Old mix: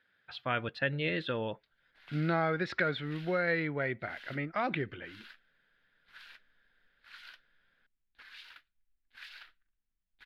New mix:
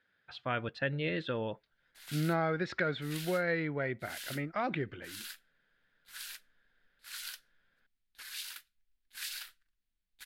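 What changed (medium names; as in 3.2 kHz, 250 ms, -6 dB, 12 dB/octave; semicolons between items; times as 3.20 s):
speech: add tape spacing loss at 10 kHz 33 dB; master: remove distance through air 350 m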